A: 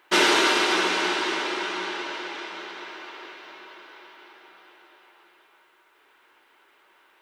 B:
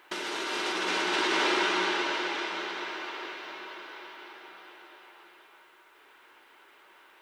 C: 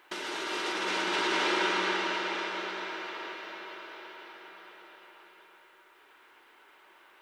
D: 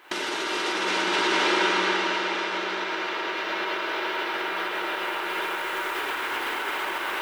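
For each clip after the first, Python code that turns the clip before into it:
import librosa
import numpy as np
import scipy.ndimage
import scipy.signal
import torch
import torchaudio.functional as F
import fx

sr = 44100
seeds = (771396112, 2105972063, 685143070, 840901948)

y1 = fx.over_compress(x, sr, threshold_db=-28.0, ratio=-1.0)
y1 = y1 * librosa.db_to_amplitude(-1.0)
y2 = fx.echo_bbd(y1, sr, ms=111, stages=2048, feedback_pct=69, wet_db=-8)
y2 = y2 * librosa.db_to_amplitude(-2.5)
y3 = fx.recorder_agc(y2, sr, target_db=-25.5, rise_db_per_s=60.0, max_gain_db=30)
y3 = y3 * librosa.db_to_amplitude(5.5)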